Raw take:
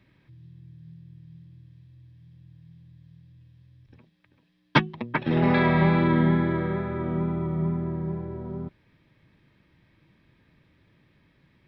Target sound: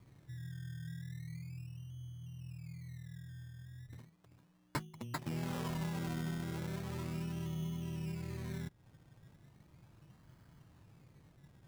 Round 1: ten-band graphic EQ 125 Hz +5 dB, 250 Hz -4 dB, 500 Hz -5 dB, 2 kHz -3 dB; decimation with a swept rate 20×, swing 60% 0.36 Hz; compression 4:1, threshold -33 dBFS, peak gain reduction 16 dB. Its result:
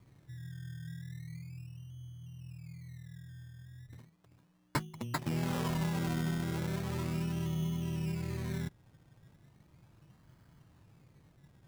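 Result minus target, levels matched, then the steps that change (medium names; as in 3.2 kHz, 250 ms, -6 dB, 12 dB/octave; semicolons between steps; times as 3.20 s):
compression: peak gain reduction -5 dB
change: compression 4:1, threshold -40 dBFS, peak gain reduction 21 dB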